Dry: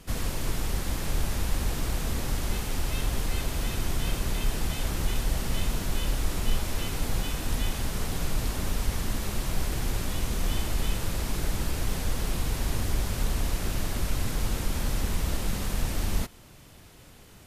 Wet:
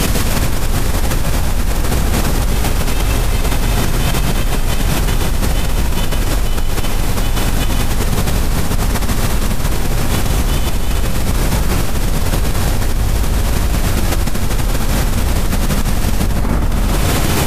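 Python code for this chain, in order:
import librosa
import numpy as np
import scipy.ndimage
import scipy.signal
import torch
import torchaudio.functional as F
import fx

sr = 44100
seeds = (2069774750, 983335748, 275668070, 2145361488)

y = fx.rev_plate(x, sr, seeds[0], rt60_s=1.8, hf_ratio=0.3, predelay_ms=105, drr_db=-1.5)
y = fx.env_flatten(y, sr, amount_pct=100)
y = y * librosa.db_to_amplitude(1.5)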